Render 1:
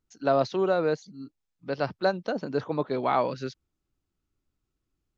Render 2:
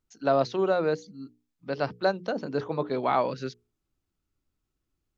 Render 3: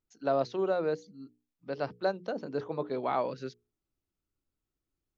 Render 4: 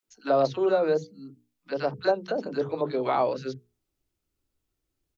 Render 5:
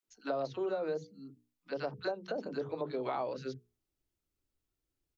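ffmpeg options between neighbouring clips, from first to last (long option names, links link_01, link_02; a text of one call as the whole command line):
ffmpeg -i in.wav -af "bandreject=frequency=60:width_type=h:width=6,bandreject=frequency=120:width_type=h:width=6,bandreject=frequency=180:width_type=h:width=6,bandreject=frequency=240:width_type=h:width=6,bandreject=frequency=300:width_type=h:width=6,bandreject=frequency=360:width_type=h:width=6,bandreject=frequency=420:width_type=h:width=6,bandreject=frequency=480:width_type=h:width=6" out.wav
ffmpeg -i in.wav -af "equalizer=frequency=460:width_type=o:width=1.7:gain=3.5,volume=-7.5dB" out.wav
ffmpeg -i in.wav -filter_complex "[0:a]acrossover=split=200|1200[link_01][link_02][link_03];[link_02]adelay=30[link_04];[link_01]adelay=80[link_05];[link_05][link_04][link_03]amix=inputs=3:normalize=0,volume=7dB" out.wav
ffmpeg -i in.wav -af "acompressor=threshold=-26dB:ratio=4,volume=-6dB" out.wav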